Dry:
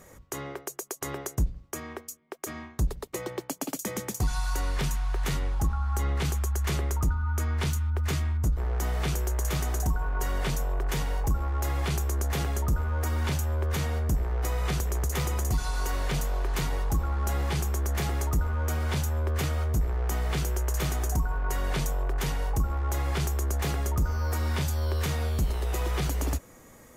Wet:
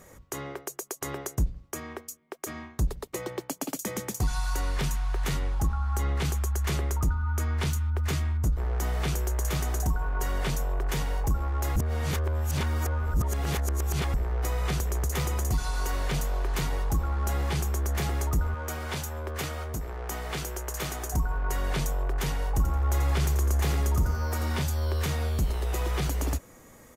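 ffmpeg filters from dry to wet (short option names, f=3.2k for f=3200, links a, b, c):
-filter_complex "[0:a]asettb=1/sr,asplit=3[a][b][c];[a]atrim=end=18.544[d];[b]atrim=start=18.54:end=21.14,asetpts=PTS-STARTPTS,afade=t=in:d=0.004:c=qsin,afade=t=out:st=2.596:d=0.004:c=qsin,lowshelf=f=190:g=-10[e];[c]atrim=start=21.136[f];[d][e]acrossfade=d=0.004:c1=hsin:c2=qsin[g];[g][f]acrossfade=d=0.004:c1=qsin:c2=hsin,asplit=3[h][i][j];[h]afade=t=out:st=22.54:d=0.02[k];[i]aecho=1:1:86|172|258|344:0.398|0.127|0.0408|0.013,afade=t=in:st=22.54:d=0.02,afade=t=out:st=24.61:d=0.02[l];[j]afade=t=in:st=24.61:d=0.02[m];[k][l][m]amix=inputs=3:normalize=0,asplit=3[n][o][p];[n]atrim=end=11.762[q];[o]atrim=start=11.758:end=14.142,asetpts=PTS-STARTPTS,areverse[r];[p]atrim=start=14.138[s];[q][r]acrossfade=d=0.004:c1=hsin:c2=hsin[t];[t][s]acrossfade=d=0.004:c1=hsin:c2=hsin"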